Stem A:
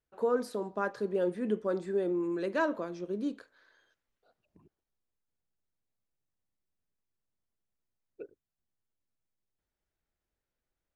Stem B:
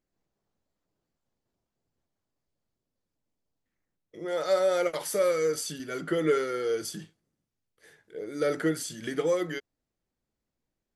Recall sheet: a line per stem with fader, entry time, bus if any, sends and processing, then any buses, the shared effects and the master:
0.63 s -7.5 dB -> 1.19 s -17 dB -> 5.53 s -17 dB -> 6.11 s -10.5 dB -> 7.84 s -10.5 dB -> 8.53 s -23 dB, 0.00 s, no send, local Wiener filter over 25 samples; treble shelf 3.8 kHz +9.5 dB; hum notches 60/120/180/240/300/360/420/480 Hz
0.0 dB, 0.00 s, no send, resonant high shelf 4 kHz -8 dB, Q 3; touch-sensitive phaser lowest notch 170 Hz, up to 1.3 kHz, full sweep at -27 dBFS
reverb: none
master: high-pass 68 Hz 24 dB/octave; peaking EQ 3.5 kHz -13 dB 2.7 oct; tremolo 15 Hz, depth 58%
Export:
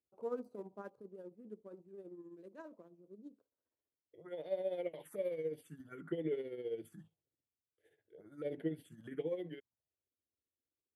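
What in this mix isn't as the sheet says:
stem A: missing hum notches 60/120/180/240/300/360/420/480 Hz; stem B 0.0 dB -> -7.0 dB

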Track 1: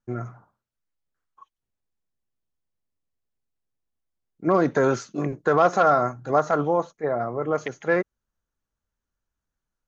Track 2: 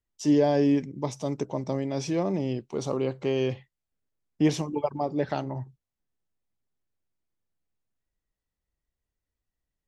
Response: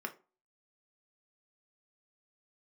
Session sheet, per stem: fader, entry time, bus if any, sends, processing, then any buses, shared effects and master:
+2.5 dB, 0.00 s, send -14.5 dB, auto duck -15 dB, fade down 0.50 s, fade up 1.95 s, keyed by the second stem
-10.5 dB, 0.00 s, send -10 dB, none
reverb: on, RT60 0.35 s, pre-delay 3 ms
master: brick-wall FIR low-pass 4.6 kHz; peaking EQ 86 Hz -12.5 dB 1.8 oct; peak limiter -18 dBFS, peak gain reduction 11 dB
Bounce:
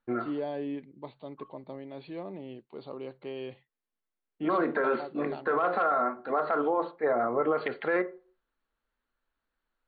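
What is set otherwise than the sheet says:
stem 1: send -14.5 dB -> -7 dB; stem 2: send off

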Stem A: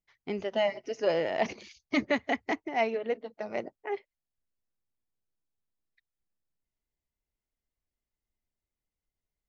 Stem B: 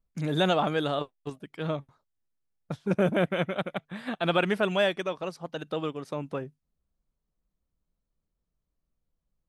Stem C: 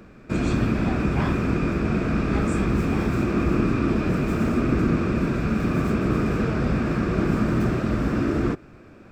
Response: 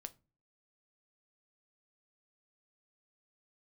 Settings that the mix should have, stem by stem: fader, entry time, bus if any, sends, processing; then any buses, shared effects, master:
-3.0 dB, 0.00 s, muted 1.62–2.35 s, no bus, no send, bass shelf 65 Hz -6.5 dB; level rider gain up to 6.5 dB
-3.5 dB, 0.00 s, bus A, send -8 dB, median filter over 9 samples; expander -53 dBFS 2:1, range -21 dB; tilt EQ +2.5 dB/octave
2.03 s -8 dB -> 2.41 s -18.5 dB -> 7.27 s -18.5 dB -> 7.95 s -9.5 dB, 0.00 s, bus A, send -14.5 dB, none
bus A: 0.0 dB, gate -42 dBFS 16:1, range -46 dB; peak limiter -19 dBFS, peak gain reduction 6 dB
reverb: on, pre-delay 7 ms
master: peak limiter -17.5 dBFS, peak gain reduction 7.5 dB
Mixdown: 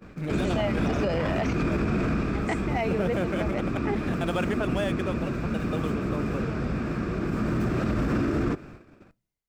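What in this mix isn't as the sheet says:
stem B: missing tilt EQ +2.5 dB/octave; stem C -8.0 dB -> +4.0 dB

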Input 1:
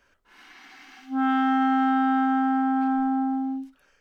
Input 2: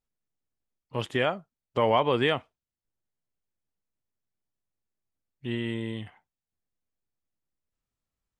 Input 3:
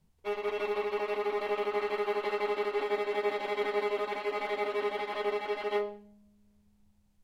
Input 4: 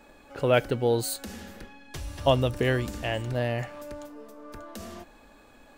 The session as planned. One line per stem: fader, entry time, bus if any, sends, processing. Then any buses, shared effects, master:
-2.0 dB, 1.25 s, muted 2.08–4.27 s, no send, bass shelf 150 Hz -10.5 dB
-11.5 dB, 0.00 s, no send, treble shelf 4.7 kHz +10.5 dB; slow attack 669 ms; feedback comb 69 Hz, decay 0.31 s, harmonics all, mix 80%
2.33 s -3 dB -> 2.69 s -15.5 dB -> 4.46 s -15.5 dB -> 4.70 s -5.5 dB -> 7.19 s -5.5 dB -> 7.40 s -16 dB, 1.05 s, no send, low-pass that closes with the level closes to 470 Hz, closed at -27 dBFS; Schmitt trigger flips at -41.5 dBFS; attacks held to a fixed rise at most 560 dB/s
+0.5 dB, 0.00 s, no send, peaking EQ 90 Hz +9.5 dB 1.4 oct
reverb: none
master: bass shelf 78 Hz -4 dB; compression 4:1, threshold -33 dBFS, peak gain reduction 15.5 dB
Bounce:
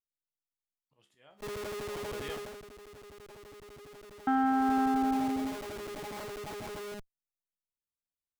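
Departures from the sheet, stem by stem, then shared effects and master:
stem 1: entry 1.25 s -> 1.90 s; stem 4: muted; master: missing compression 4:1, threshold -33 dBFS, peak gain reduction 15.5 dB

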